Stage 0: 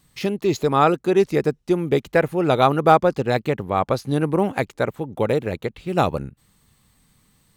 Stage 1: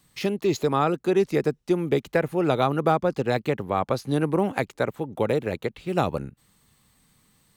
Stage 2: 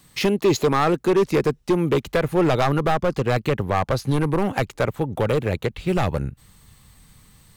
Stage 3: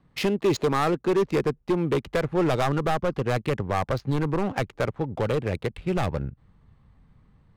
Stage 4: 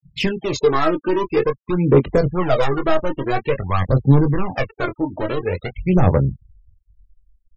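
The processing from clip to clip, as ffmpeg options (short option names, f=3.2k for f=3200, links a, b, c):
-filter_complex "[0:a]lowshelf=f=120:g=-6,acrossover=split=280[a][b];[b]acompressor=threshold=-20dB:ratio=2.5[c];[a][c]amix=inputs=2:normalize=0,volume=-1dB"
-af "asoftclip=type=hard:threshold=-19dB,asubboost=boost=3:cutoff=130,alimiter=limit=-20.5dB:level=0:latency=1:release=248,volume=8.5dB"
-af "adynamicsmooth=sensitivity=5:basefreq=1.3k,volume=-4dB"
-filter_complex "[0:a]aphaser=in_gain=1:out_gain=1:delay=3.3:decay=0.7:speed=0.49:type=sinusoidal,asplit=2[a][b];[b]adelay=22,volume=-6dB[c];[a][c]amix=inputs=2:normalize=0,afftfilt=real='re*gte(hypot(re,im),0.0251)':imag='im*gte(hypot(re,im),0.0251)':win_size=1024:overlap=0.75,volume=1.5dB"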